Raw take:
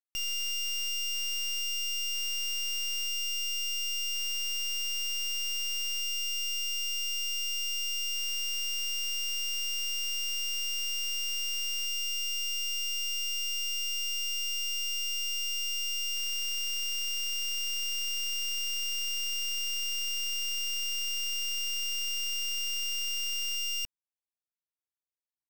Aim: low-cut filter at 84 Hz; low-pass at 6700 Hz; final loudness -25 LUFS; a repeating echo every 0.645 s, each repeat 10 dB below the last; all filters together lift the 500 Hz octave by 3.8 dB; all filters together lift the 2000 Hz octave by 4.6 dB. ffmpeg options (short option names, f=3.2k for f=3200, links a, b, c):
-af "highpass=84,lowpass=6.7k,equalizer=f=500:t=o:g=4.5,equalizer=f=2k:t=o:g=9,aecho=1:1:645|1290|1935|2580:0.316|0.101|0.0324|0.0104,volume=-0.5dB"